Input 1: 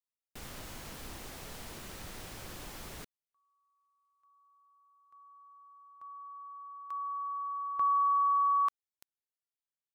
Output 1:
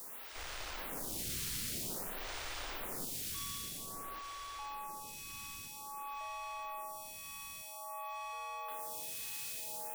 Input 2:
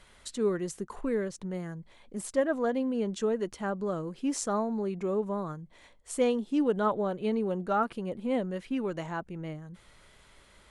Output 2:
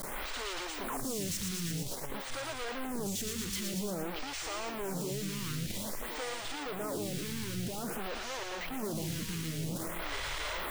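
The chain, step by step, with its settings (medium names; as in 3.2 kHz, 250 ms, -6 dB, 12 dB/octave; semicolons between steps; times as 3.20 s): one-bit comparator; ever faster or slower copies 124 ms, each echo -5 st, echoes 3, each echo -6 dB; on a send: feedback echo behind a high-pass 115 ms, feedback 82%, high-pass 2.5 kHz, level -4 dB; on the sum: lamp-driven phase shifter 0.51 Hz; trim -4 dB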